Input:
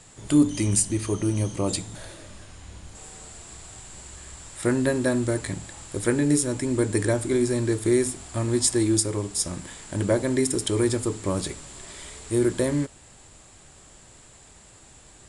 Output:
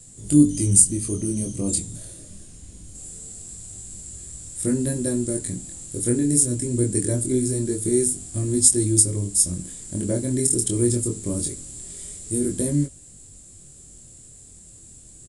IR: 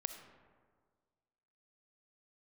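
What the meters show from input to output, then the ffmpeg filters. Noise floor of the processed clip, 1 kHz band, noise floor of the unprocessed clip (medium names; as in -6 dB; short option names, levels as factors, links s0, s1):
-47 dBFS, under -10 dB, -51 dBFS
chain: -af "firequalizer=gain_entry='entry(190,0);entry(870,-19);entry(8500,6)':delay=0.05:min_phase=1,flanger=delay=20:depth=5.1:speed=0.23,volume=2.11"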